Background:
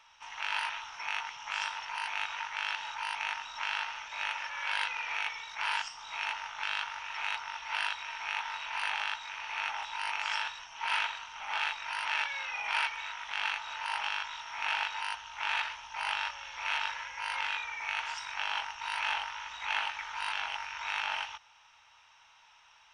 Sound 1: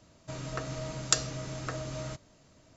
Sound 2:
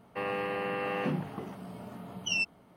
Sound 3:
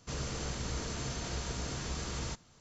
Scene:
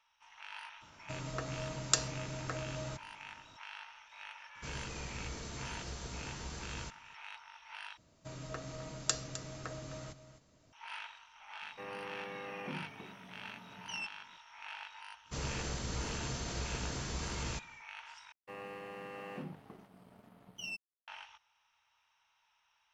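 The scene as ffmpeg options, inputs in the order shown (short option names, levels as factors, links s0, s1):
-filter_complex "[1:a]asplit=2[s0][s1];[3:a]asplit=2[s2][s3];[2:a]asplit=2[s4][s5];[0:a]volume=0.188[s6];[s1]aecho=1:1:258:0.224[s7];[s5]aeval=exprs='sgn(val(0))*max(abs(val(0))-0.00335,0)':c=same[s8];[s6]asplit=3[s9][s10][s11];[s9]atrim=end=7.974[s12];[s7]atrim=end=2.76,asetpts=PTS-STARTPTS,volume=0.447[s13];[s10]atrim=start=10.726:end=18.324[s14];[s8]atrim=end=2.76,asetpts=PTS-STARTPTS,volume=0.251[s15];[s11]atrim=start=21.076[s16];[s0]atrim=end=2.76,asetpts=PTS-STARTPTS,volume=0.668,afade=t=in:d=0.004:c=hsin,afade=t=out:st=2.756:d=0.004:c=hsin,adelay=810[s17];[s2]atrim=end=2.6,asetpts=PTS-STARTPTS,volume=0.473,afade=t=in:d=0.004:c=hsin,afade=t=out:st=2.596:d=0.004:c=hsin,adelay=4550[s18];[s4]atrim=end=2.76,asetpts=PTS-STARTPTS,volume=0.251,afade=t=in:d=0.004:c=hsin,afade=t=out:st=2.756:d=0.004:c=hsin,adelay=512442S[s19];[s3]atrim=end=2.6,asetpts=PTS-STARTPTS,volume=0.841,afade=t=in:d=0.1,afade=t=out:st=2.5:d=0.1,adelay=672084S[s20];[s12][s13]acrossfade=d=0.004:c1=hsin:c2=hsin[s21];[s21][s14]acrossfade=d=0.004:c1=hsin:c2=hsin[s22];[s22][s15]acrossfade=d=0.004:c1=hsin:c2=hsin[s23];[s23][s16]acrossfade=d=0.004:c1=hsin:c2=hsin[s24];[s24][s17][s18][s19][s20]amix=inputs=5:normalize=0"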